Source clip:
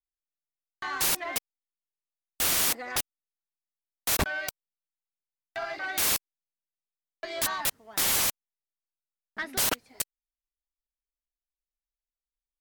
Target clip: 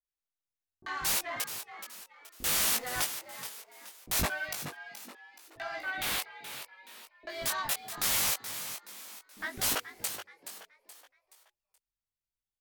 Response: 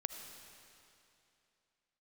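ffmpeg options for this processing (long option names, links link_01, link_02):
-filter_complex "[0:a]asettb=1/sr,asplit=3[link_01][link_02][link_03];[link_01]atrim=end=2.484[link_04];[link_02]atrim=start=2.48:end=3,asetpts=PTS-STARTPTS,afade=type=in:duration=0.004:curve=qsin,afade=type=out:start_time=0.516:duration=0.004:curve=qsin,aeval=exprs='val(0)+0.5*0.0126*sgn(val(0))':channel_layout=same[link_05];[link_03]atrim=start=2.996[link_06];[link_04][link_05]acrossfade=duration=0.004:curve1=hsin:curve2=qsin[link_07];[link_07][link_06]acrossfade=duration=0.004:curve1=qsin:curve2=hsin,asplit=3[link_08][link_09][link_10];[link_08]afade=type=out:start_time=5.75:duration=0.02[link_11];[link_09]highshelf=frequency=4400:width_type=q:width=1.5:gain=-6,afade=type=in:start_time=5.75:duration=0.02,afade=type=out:start_time=6.15:duration=0.02[link_12];[link_10]afade=type=in:start_time=6.15:duration=0.02[link_13];[link_11][link_12][link_13]amix=inputs=3:normalize=0,asplit=5[link_14][link_15][link_16][link_17][link_18];[link_15]adelay=425,afreqshift=89,volume=-10.5dB[link_19];[link_16]adelay=850,afreqshift=178,volume=-18.7dB[link_20];[link_17]adelay=1275,afreqshift=267,volume=-26.9dB[link_21];[link_18]adelay=1700,afreqshift=356,volume=-35dB[link_22];[link_14][link_19][link_20][link_21][link_22]amix=inputs=5:normalize=0,flanger=delay=18.5:depth=3:speed=0.71,acrossover=split=380[link_23][link_24];[link_24]adelay=40[link_25];[link_23][link_25]amix=inputs=2:normalize=0"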